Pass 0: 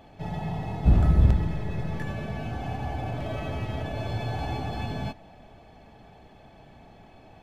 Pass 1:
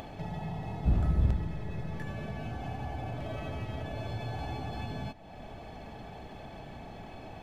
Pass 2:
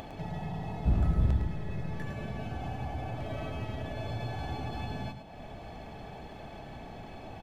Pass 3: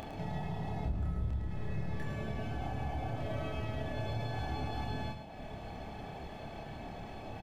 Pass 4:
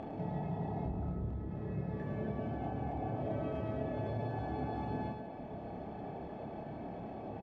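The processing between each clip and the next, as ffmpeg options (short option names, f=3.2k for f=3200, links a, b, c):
-af "acompressor=mode=upward:threshold=-24dB:ratio=2.5,volume=-7.5dB"
-af "aecho=1:1:107:0.398"
-filter_complex "[0:a]acompressor=threshold=-32dB:ratio=6,asplit=2[a][b];[b]adelay=28,volume=-3.5dB[c];[a][c]amix=inputs=2:normalize=0,volume=-1.5dB"
-filter_complex "[0:a]bandpass=f=320:t=q:w=0.67:csg=0,asplit=2[a][b];[b]adelay=250,highpass=300,lowpass=3.4k,asoftclip=type=hard:threshold=-38.5dB,volume=-7dB[c];[a][c]amix=inputs=2:normalize=0,volume=4dB"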